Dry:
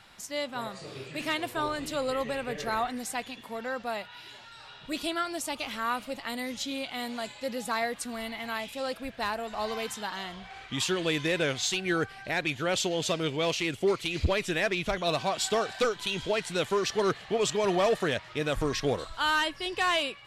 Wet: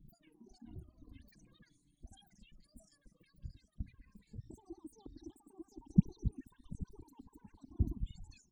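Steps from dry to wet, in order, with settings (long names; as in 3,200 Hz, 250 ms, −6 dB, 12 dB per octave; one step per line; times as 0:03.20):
spectral envelope exaggerated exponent 3
in parallel at −2 dB: downward compressor 10 to 1, threshold −35 dBFS, peak gain reduction 14 dB
on the sum: change of speed 2.38×
inverse Chebyshev low-pass filter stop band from 510 Hz, stop band 40 dB
repeating echo 732 ms, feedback 47%, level −19 dB
flanger swept by the level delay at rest 7.8 ms, full sweep at −36.5 dBFS
noise reduction from a noise print of the clip's start 7 dB
reversed playback
upward compression, threshold −57 dBFS
reversed playback
level +3.5 dB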